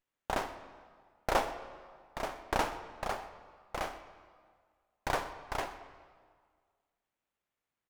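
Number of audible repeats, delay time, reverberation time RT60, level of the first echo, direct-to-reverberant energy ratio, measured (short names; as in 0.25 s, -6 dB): 1, 0.125 s, 1.8 s, -20.0 dB, 10.5 dB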